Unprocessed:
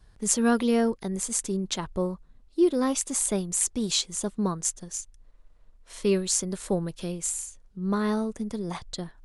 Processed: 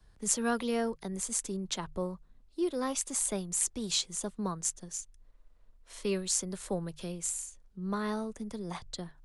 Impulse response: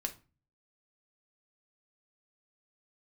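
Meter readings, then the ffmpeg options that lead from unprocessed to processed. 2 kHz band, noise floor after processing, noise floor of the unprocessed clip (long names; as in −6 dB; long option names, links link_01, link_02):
−4.5 dB, −62 dBFS, −57 dBFS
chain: -filter_complex "[0:a]bandreject=frequency=50:width_type=h:width=6,bandreject=frequency=100:width_type=h:width=6,bandreject=frequency=150:width_type=h:width=6,acrossover=split=200|390|1600[link_01][link_02][link_03][link_04];[link_02]acompressor=threshold=-42dB:ratio=6[link_05];[link_01][link_05][link_03][link_04]amix=inputs=4:normalize=0,volume=-4.5dB"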